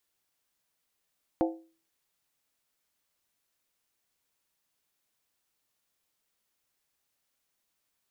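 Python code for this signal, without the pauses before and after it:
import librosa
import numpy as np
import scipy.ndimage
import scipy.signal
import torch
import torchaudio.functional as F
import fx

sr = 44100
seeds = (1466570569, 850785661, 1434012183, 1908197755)

y = fx.strike_skin(sr, length_s=0.63, level_db=-21.5, hz=327.0, decay_s=0.39, tilt_db=3.5, modes=5)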